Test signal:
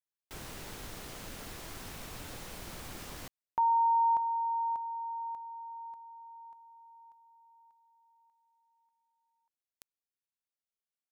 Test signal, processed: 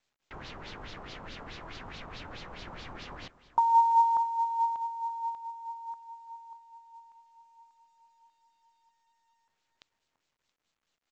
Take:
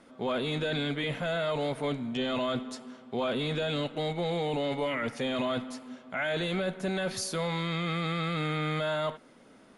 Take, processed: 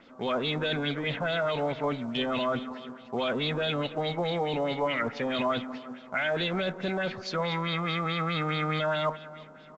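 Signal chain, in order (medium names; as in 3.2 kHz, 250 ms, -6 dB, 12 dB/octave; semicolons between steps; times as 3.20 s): feedback delay 338 ms, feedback 41%, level -17.5 dB; LFO low-pass sine 4.7 Hz 960–4300 Hz; µ-law 128 kbps 16 kHz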